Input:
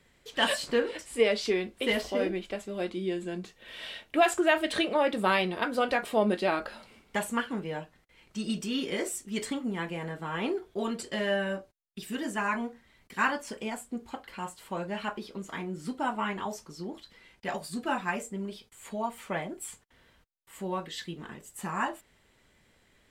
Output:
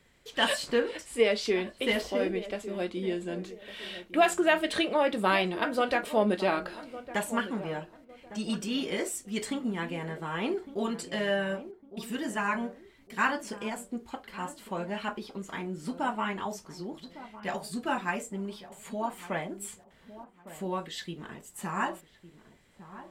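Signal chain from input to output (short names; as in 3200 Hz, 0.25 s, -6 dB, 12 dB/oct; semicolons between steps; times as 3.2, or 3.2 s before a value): darkening echo 1.157 s, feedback 36%, low-pass 890 Hz, level -13 dB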